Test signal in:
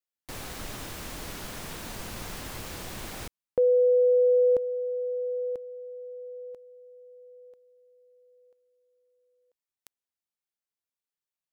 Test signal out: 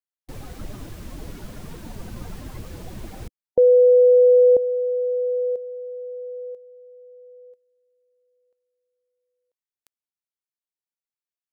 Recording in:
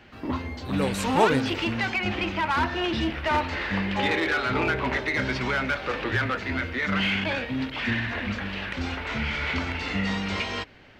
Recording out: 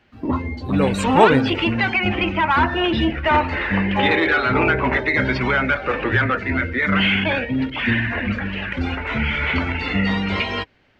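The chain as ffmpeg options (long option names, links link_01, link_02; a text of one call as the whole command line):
ffmpeg -i in.wav -af "afftdn=noise_reduction=15:noise_floor=-34,volume=7.5dB" out.wav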